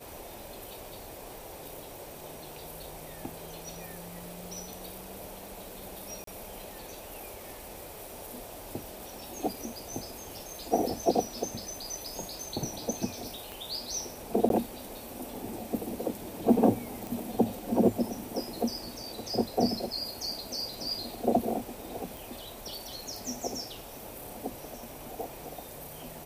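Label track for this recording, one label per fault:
6.240000	6.270000	dropout 33 ms
13.520000	13.520000	pop
14.490000	14.500000	dropout 12 ms
17.070000	17.070000	pop
22.170000	22.170000	pop

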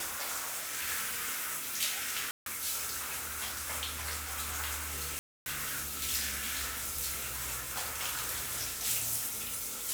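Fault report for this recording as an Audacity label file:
2.310000	2.460000	dropout 152 ms
5.190000	5.460000	dropout 271 ms

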